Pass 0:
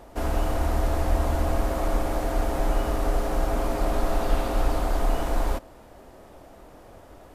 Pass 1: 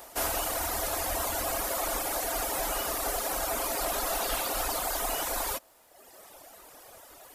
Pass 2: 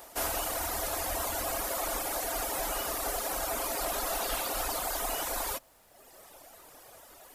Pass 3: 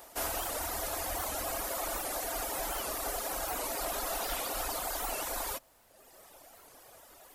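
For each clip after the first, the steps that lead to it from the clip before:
RIAA equalisation recording; reverb reduction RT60 1.3 s; parametric band 230 Hz −5.5 dB 2.2 octaves; level +2.5 dB
background noise pink −67 dBFS; level −2 dB
wow of a warped record 78 rpm, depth 160 cents; level −2.5 dB

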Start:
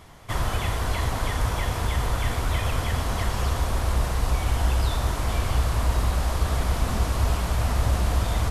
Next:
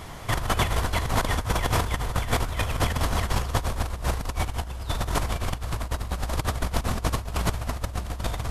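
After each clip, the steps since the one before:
compressor whose output falls as the input rises −28 dBFS, ratio −0.5
level +3 dB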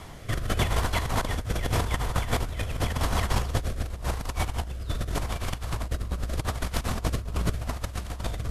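rotating-speaker cabinet horn 0.85 Hz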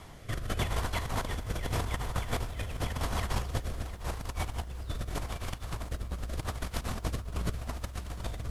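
feedback echo at a low word length 703 ms, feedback 35%, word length 8 bits, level −15 dB
level −6 dB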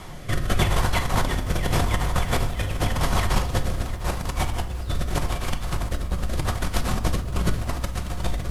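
convolution reverb RT60 0.60 s, pre-delay 6 ms, DRR 7.5 dB
level +9 dB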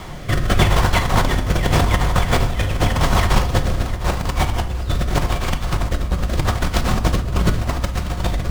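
windowed peak hold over 3 samples
level +6.5 dB

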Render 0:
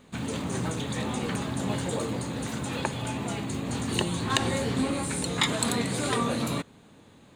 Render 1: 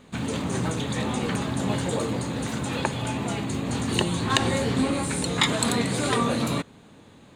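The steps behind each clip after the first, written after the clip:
high-shelf EQ 11,000 Hz −5.5 dB
level +3.5 dB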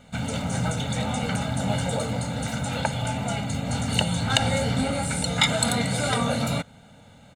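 comb filter 1.4 ms, depth 89%
level −1.5 dB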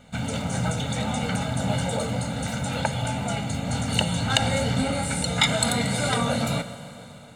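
four-comb reverb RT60 3.6 s, combs from 33 ms, DRR 12 dB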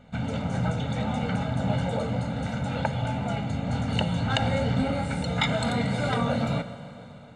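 head-to-tape spacing loss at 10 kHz 21 dB

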